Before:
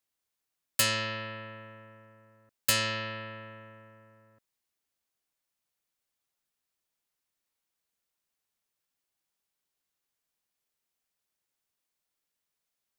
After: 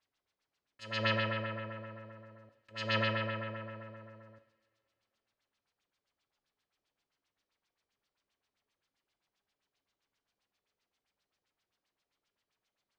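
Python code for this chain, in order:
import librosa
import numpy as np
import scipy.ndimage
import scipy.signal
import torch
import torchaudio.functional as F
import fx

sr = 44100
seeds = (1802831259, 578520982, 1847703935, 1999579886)

y = fx.over_compress(x, sr, threshold_db=-34.0, ratio=-0.5)
y = fx.filter_lfo_lowpass(y, sr, shape='sine', hz=7.6, low_hz=380.0, high_hz=5100.0, q=1.7)
y = fx.rev_double_slope(y, sr, seeds[0], early_s=0.74, late_s=2.7, knee_db=-19, drr_db=7.5)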